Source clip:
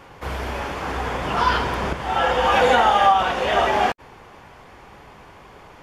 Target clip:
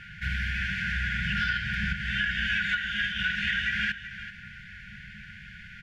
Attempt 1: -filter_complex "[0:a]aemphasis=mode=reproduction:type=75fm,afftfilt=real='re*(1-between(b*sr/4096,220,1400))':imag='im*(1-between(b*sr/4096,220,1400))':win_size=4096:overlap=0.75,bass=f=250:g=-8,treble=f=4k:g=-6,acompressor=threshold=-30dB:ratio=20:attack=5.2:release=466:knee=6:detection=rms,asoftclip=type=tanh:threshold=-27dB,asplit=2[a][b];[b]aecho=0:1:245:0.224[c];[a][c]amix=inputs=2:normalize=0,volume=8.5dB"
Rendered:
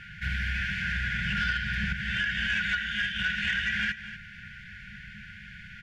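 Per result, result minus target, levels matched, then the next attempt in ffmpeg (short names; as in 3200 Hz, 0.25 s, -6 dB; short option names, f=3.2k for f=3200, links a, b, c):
echo 0.14 s early; soft clip: distortion +11 dB
-filter_complex "[0:a]aemphasis=mode=reproduction:type=75fm,afftfilt=real='re*(1-between(b*sr/4096,220,1400))':imag='im*(1-between(b*sr/4096,220,1400))':win_size=4096:overlap=0.75,bass=f=250:g=-8,treble=f=4k:g=-6,acompressor=threshold=-30dB:ratio=20:attack=5.2:release=466:knee=6:detection=rms,asoftclip=type=tanh:threshold=-27dB,asplit=2[a][b];[b]aecho=0:1:385:0.224[c];[a][c]amix=inputs=2:normalize=0,volume=8.5dB"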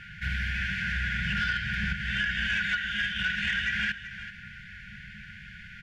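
soft clip: distortion +11 dB
-filter_complex "[0:a]aemphasis=mode=reproduction:type=75fm,afftfilt=real='re*(1-between(b*sr/4096,220,1400))':imag='im*(1-between(b*sr/4096,220,1400))':win_size=4096:overlap=0.75,bass=f=250:g=-8,treble=f=4k:g=-6,acompressor=threshold=-30dB:ratio=20:attack=5.2:release=466:knee=6:detection=rms,asoftclip=type=tanh:threshold=-21dB,asplit=2[a][b];[b]aecho=0:1:385:0.224[c];[a][c]amix=inputs=2:normalize=0,volume=8.5dB"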